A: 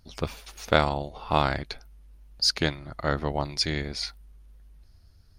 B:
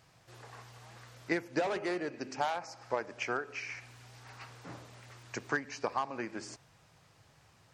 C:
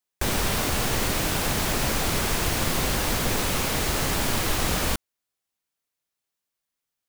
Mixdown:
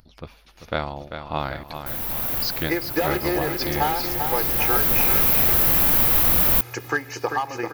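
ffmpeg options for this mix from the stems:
ffmpeg -i stem1.wav -i stem2.wav -i stem3.wav -filter_complex "[0:a]lowpass=4400,dynaudnorm=framelen=110:gausssize=9:maxgain=8dB,volume=-8dB,asplit=3[link_01][link_02][link_03];[link_02]volume=-8.5dB[link_04];[1:a]aecho=1:1:2.4:0.65,dynaudnorm=framelen=250:gausssize=9:maxgain=8dB,adelay=1400,volume=-1dB,asplit=2[link_05][link_06];[link_06]volume=-6.5dB[link_07];[2:a]highshelf=frequency=5400:gain=-8,adelay=1650,volume=0.5dB[link_08];[link_03]apad=whole_len=385120[link_09];[link_08][link_09]sidechaincompress=threshold=-34dB:ratio=12:attack=7.8:release=1410[link_10];[link_04][link_07]amix=inputs=2:normalize=0,aecho=0:1:392|784|1176|1568|1960|2352|2744|3136|3528:1|0.58|0.336|0.195|0.113|0.0656|0.0381|0.0221|0.0128[link_11];[link_01][link_05][link_10][link_11]amix=inputs=4:normalize=0,bandreject=frequency=410:width=12,acompressor=mode=upward:threshold=-48dB:ratio=2.5,aexciter=amount=9.4:drive=7.9:freq=11000" out.wav

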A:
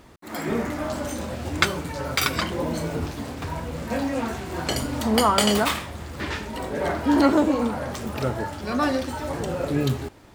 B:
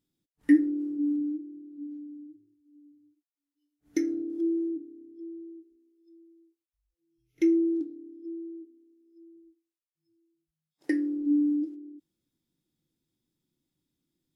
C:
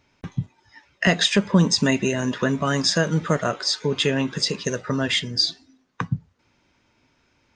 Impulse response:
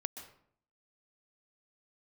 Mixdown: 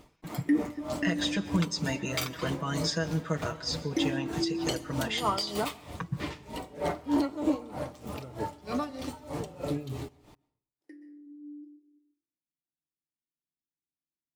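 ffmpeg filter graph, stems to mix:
-filter_complex "[0:a]equalizer=frequency=1600:width=3.7:gain=-9.5,aecho=1:1:6.7:0.34,aeval=exprs='val(0)*pow(10,-18*(0.5-0.5*cos(2*PI*3.2*n/s))/20)':channel_layout=same,volume=-5dB,asplit=2[link_01][link_02];[link_02]volume=-14.5dB[link_03];[1:a]volume=-2.5dB,asplit=2[link_04][link_05];[link_05]volume=-22dB[link_06];[2:a]aecho=1:1:6.2:0.95,volume=-16dB,asplit=3[link_07][link_08][link_09];[link_08]volume=-6dB[link_10];[link_09]apad=whole_len=632918[link_11];[link_04][link_11]sidechaingate=range=-33dB:threshold=-59dB:ratio=16:detection=peak[link_12];[3:a]atrim=start_sample=2205[link_13];[link_03][link_06][link_10]amix=inputs=3:normalize=0[link_14];[link_14][link_13]afir=irnorm=-1:irlink=0[link_15];[link_01][link_12][link_07][link_15]amix=inputs=4:normalize=0,alimiter=limit=-17dB:level=0:latency=1:release=297"

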